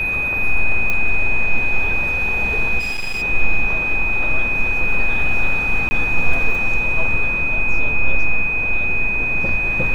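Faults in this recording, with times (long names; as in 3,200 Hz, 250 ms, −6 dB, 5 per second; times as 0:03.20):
whistle 2,500 Hz −18 dBFS
0:00.90: click −8 dBFS
0:02.79–0:03.23: clipping −19.5 dBFS
0:05.89–0:05.91: drop-out 20 ms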